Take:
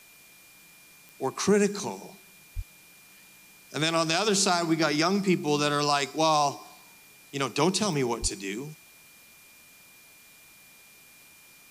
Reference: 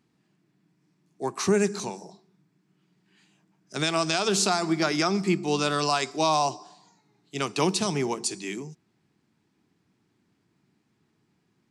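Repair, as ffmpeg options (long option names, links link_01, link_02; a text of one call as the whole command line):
ffmpeg -i in.wav -filter_complex "[0:a]adeclick=threshold=4,bandreject=frequency=2400:width=30,asplit=3[link_01][link_02][link_03];[link_01]afade=type=out:start_time=2.55:duration=0.02[link_04];[link_02]highpass=frequency=140:width=0.5412,highpass=frequency=140:width=1.3066,afade=type=in:start_time=2.55:duration=0.02,afade=type=out:start_time=2.67:duration=0.02[link_05];[link_03]afade=type=in:start_time=2.67:duration=0.02[link_06];[link_04][link_05][link_06]amix=inputs=3:normalize=0,asplit=3[link_07][link_08][link_09];[link_07]afade=type=out:start_time=8.21:duration=0.02[link_10];[link_08]highpass=frequency=140:width=0.5412,highpass=frequency=140:width=1.3066,afade=type=in:start_time=8.21:duration=0.02,afade=type=out:start_time=8.33:duration=0.02[link_11];[link_09]afade=type=in:start_time=8.33:duration=0.02[link_12];[link_10][link_11][link_12]amix=inputs=3:normalize=0,afwtdn=0.002" out.wav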